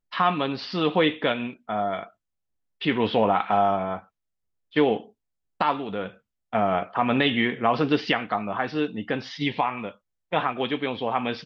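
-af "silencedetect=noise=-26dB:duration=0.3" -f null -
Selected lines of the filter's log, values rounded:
silence_start: 2.03
silence_end: 2.82 | silence_duration: 0.79
silence_start: 3.97
silence_end: 4.76 | silence_duration: 0.80
silence_start: 4.97
silence_end: 5.61 | silence_duration: 0.64
silence_start: 6.06
silence_end: 6.53 | silence_duration: 0.47
silence_start: 9.89
silence_end: 10.33 | silence_duration: 0.44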